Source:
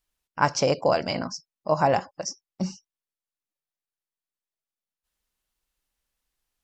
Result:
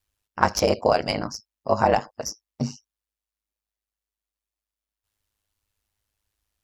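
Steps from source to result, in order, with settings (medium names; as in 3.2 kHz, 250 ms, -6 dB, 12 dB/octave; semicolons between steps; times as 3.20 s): tracing distortion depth 0.02 ms; ring modulator 52 Hz; trim +4.5 dB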